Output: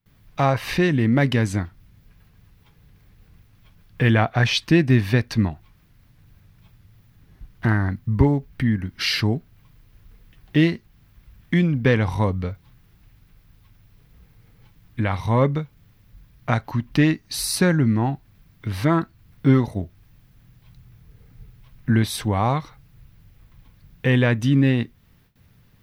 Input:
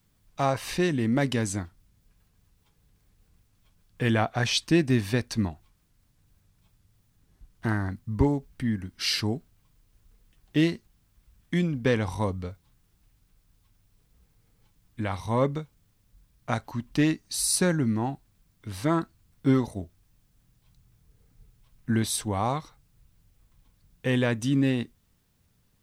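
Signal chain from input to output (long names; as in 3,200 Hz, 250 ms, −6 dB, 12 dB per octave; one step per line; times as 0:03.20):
noise gate with hold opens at −58 dBFS
graphic EQ with 10 bands 125 Hz +5 dB, 2,000 Hz +4 dB, 8,000 Hz −11 dB
in parallel at +2.5 dB: downward compressor, threshold −36 dBFS, peak gain reduction 19.5 dB
on the sum: level +2.5 dB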